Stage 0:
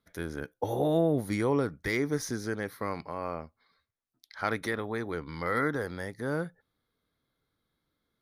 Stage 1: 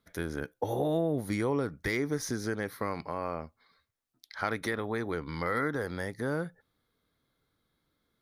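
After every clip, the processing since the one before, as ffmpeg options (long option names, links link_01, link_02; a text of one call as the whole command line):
ffmpeg -i in.wav -af "acompressor=threshold=-33dB:ratio=2,volume=3dB" out.wav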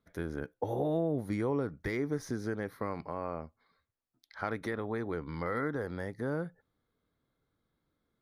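ffmpeg -i in.wav -af "highshelf=frequency=2100:gain=-10.5,volume=-1.5dB" out.wav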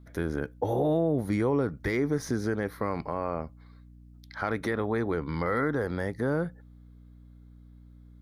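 ffmpeg -i in.wav -filter_complex "[0:a]aeval=exprs='val(0)+0.00141*(sin(2*PI*60*n/s)+sin(2*PI*2*60*n/s)/2+sin(2*PI*3*60*n/s)/3+sin(2*PI*4*60*n/s)/4+sin(2*PI*5*60*n/s)/5)':channel_layout=same,asplit=2[link_01][link_02];[link_02]alimiter=level_in=3dB:limit=-24dB:level=0:latency=1:release=15,volume=-3dB,volume=2.5dB[link_03];[link_01][link_03]amix=inputs=2:normalize=0" out.wav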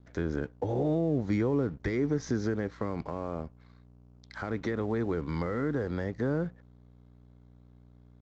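ffmpeg -i in.wav -filter_complex "[0:a]acrossover=split=460[link_01][link_02];[link_02]acompressor=threshold=-37dB:ratio=5[link_03];[link_01][link_03]amix=inputs=2:normalize=0,aresample=16000,aeval=exprs='sgn(val(0))*max(abs(val(0))-0.00158,0)':channel_layout=same,aresample=44100" out.wav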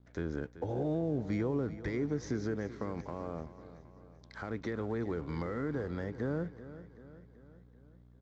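ffmpeg -i in.wav -af "aecho=1:1:384|768|1152|1536|1920:0.188|0.0979|0.0509|0.0265|0.0138,volume=-5dB" out.wav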